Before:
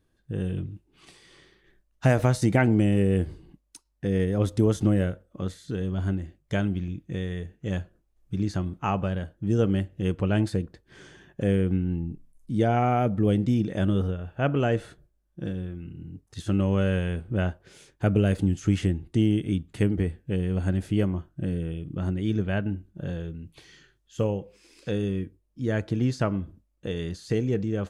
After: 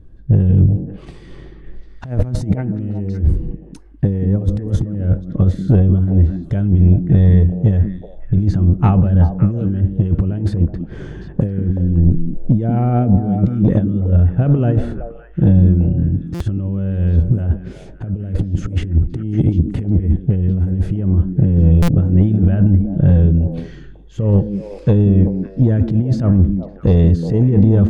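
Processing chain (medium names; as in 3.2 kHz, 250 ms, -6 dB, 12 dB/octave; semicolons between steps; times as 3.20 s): tilt EQ -4.5 dB/octave; compressor with a negative ratio -17 dBFS, ratio -0.5; saturation -9 dBFS, distortion -18 dB; repeats whose band climbs or falls 187 ms, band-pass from 240 Hz, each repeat 1.4 oct, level -4 dB; buffer glitch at 16.34/21.82 s, samples 256, times 10; trim +6 dB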